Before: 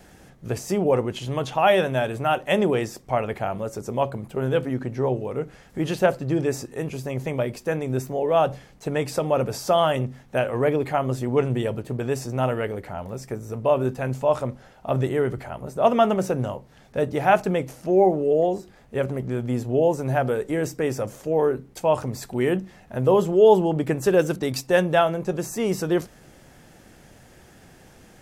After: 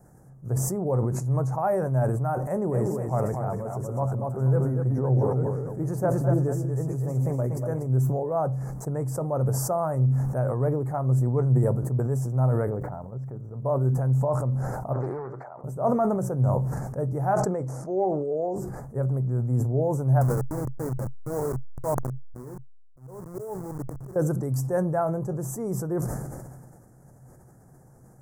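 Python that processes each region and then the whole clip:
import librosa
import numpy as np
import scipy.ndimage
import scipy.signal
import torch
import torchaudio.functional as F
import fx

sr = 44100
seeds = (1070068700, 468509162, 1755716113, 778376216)

y = fx.chain(x, sr, fx.reverse_delay(ms=340, wet_db=-9.0),
    fx.echo_single(ms=239, db=-6.0), at=(2.43, 7.87))
y = fx.lowpass(y, sr, hz=2300.0, slope=12, at=(12.69, 13.62), fade=0.02)
y = fx.dmg_crackle(y, sr, seeds[0], per_s=490.0, level_db=-54.0, at=(12.69, 13.62), fade=0.02)
y = fx.level_steps(y, sr, step_db=11, at=(12.69, 13.62), fade=0.02)
y = fx.chain(y, sr, fx.highpass(hz=590.0, slope=12),
    fx.air_absorb(metres=210.0),
    fx.doppler_dist(depth_ms=0.37), at=(14.93, 15.64))
y = fx.chain(y, sr, fx.lowpass(hz=5100.0, slope=12),
    fx.bass_treble(bass_db=-8, treble_db=6), at=(17.34, 18.56))
y = fx.chain(y, sr, fx.delta_hold(step_db=-20.0),
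    fx.auto_swell(attack_ms=620.0), at=(20.21, 24.16))
y = scipy.signal.sosfilt(scipy.signal.cheby1(2, 1.0, [1100.0, 8100.0], 'bandstop', fs=sr, output='sos'), y)
y = fx.peak_eq(y, sr, hz=130.0, db=14.5, octaves=0.44)
y = fx.sustainer(y, sr, db_per_s=32.0)
y = y * 10.0 ** (-7.0 / 20.0)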